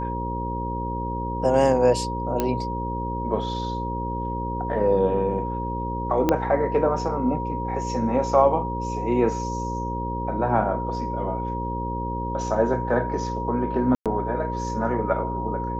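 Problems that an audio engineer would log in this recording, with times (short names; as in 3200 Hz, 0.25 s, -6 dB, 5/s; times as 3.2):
buzz 60 Hz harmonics 9 -30 dBFS
tone 950 Hz -29 dBFS
2.4 pop -9 dBFS
6.29 pop -7 dBFS
13.95–14.06 gap 0.107 s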